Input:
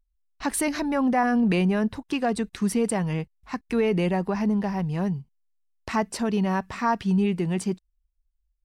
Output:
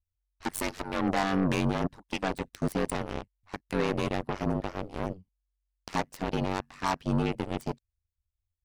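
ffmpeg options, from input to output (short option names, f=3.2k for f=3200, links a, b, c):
-af "aeval=exprs='val(0)*sin(2*PI*47*n/s)':c=same,aeval=exprs='0.211*(cos(1*acos(clip(val(0)/0.211,-1,1)))-cos(1*PI/2))+0.0133*(cos(4*acos(clip(val(0)/0.211,-1,1)))-cos(4*PI/2))+0.0422*(cos(7*acos(clip(val(0)/0.211,-1,1)))-cos(7*PI/2))':c=same,asoftclip=type=tanh:threshold=-15dB,volume=-1dB"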